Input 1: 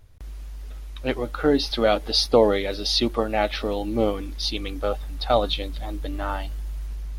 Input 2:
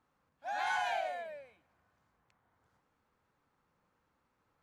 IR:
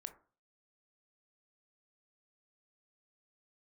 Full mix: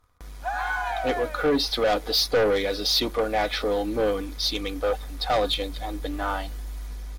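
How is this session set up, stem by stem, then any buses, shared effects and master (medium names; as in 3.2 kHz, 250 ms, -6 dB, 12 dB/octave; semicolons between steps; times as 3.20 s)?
-16.0 dB, 0.00 s, no send, bass shelf 70 Hz -11.5 dB; sine folder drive 7 dB, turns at -3.5 dBFS; peaking EQ 230 Hz -14 dB 0.23 oct
-0.5 dB, 0.00 s, no send, peaking EQ 1.2 kHz +14 dB 0.84 oct; compression 5:1, threshold -34 dBFS, peak gain reduction 10.5 dB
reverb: none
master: band-stop 2.8 kHz, Q 8.6; comb 4.1 ms, depth 47%; waveshaping leveller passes 2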